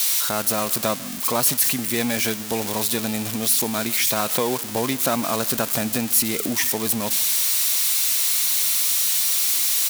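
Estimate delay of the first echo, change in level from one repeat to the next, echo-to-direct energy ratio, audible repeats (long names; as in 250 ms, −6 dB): 146 ms, repeats not evenly spaced, −20.0 dB, 1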